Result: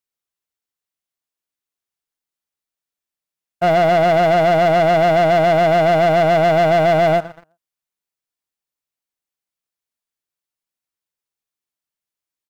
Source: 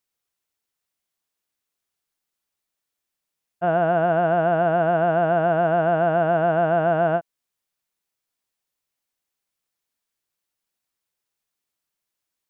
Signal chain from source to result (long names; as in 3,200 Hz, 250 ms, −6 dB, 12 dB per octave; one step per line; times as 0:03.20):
repeating echo 122 ms, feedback 43%, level −23 dB
leveller curve on the samples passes 3